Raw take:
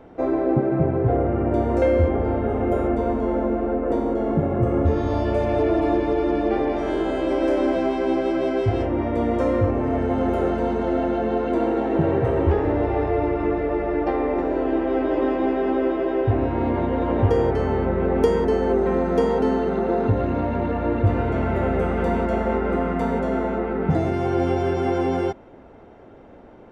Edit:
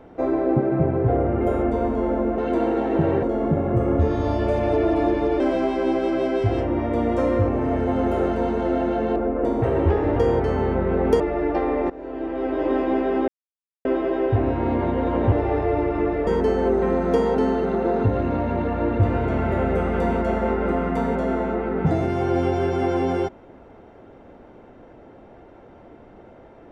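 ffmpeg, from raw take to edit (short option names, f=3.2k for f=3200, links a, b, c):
-filter_complex "[0:a]asplit=13[a][b][c][d][e][f][g][h][i][j][k][l][m];[a]atrim=end=1.412[n];[b]atrim=start=2.658:end=3.632[o];[c]atrim=start=11.378:end=12.232[p];[d]atrim=start=4.088:end=6.262[q];[e]atrim=start=7.618:end=11.382[r];[f]atrim=start=3.628:end=4.092[s];[g]atrim=start=12.228:end=12.772[t];[h]atrim=start=17.268:end=18.312[u];[i]atrim=start=13.718:end=14.42,asetpts=PTS-STARTPTS,afade=t=out:st=0.698:d=0.004:c=hsin:silence=0.133352[v];[j]atrim=start=14.42:end=15.8,asetpts=PTS-STARTPTS,afade=t=in:d=0.86:silence=0.133352,afade=t=out:st=1.376:d=0.004:c=hsin,apad=pad_dur=0.57[w];[k]atrim=start=15.8:end=17.272,asetpts=PTS-STARTPTS,afade=t=in:d=0.004:c=hsin[x];[l]atrim=start=12.768:end=13.722[y];[m]atrim=start=18.308[z];[n][o]acrossfade=d=0.004:c1=hsin:c2=hsin[aa];[aa][p]acrossfade=d=0.004:c1=hsin:c2=hsin[ab];[ab][q]acrossfade=d=0.004:c1=hsin:c2=hsin[ac];[ac][r]acrossfade=d=0.004:c1=hsin:c2=hsin[ad];[ad][s]acrossfade=d=0.004:c1=hsin:c2=hsin[ae];[ae][t]acrossfade=d=0.004:c1=hsin:c2=hsin[af];[af][u]acrossfade=d=0.004:c1=hsin:c2=hsin[ag];[v][w][x]concat=n=3:v=0:a=1[ah];[ag][ah]acrossfade=d=0.004:c1=hsin:c2=hsin[ai];[ai][y]acrossfade=d=0.004:c1=hsin:c2=hsin[aj];[aj][z]acrossfade=d=0.004:c1=hsin:c2=hsin"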